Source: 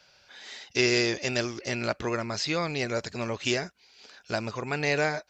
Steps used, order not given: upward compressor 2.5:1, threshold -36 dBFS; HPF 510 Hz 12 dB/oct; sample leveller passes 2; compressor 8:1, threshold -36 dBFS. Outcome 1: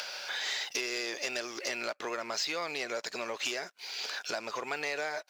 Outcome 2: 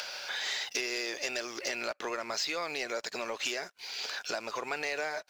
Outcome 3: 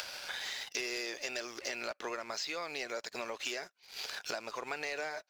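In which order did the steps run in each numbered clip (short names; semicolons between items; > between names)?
compressor > upward compressor > sample leveller > HPF; compressor > upward compressor > HPF > sample leveller; HPF > upward compressor > sample leveller > compressor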